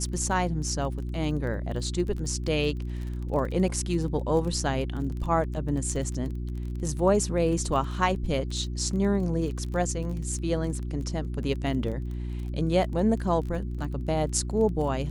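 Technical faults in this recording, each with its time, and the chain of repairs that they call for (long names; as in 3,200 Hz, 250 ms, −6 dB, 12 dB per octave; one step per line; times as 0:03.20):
surface crackle 21 per second −34 dBFS
mains hum 60 Hz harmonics 6 −32 dBFS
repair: click removal
hum removal 60 Hz, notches 6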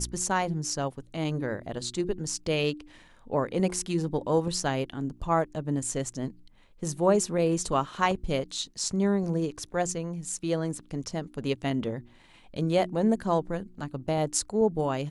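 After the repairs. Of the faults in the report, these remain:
none of them is left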